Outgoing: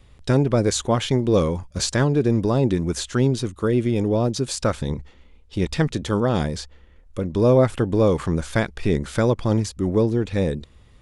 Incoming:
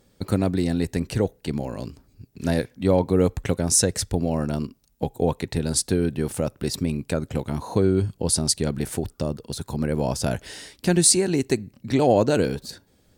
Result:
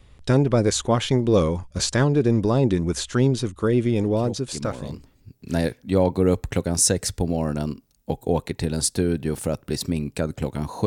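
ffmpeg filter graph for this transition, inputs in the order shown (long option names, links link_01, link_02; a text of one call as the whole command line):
ffmpeg -i cue0.wav -i cue1.wav -filter_complex "[0:a]apad=whole_dur=10.86,atrim=end=10.86,atrim=end=5.38,asetpts=PTS-STARTPTS[link_01];[1:a]atrim=start=0.87:end=7.79,asetpts=PTS-STARTPTS[link_02];[link_01][link_02]acrossfade=duration=1.44:curve1=tri:curve2=tri" out.wav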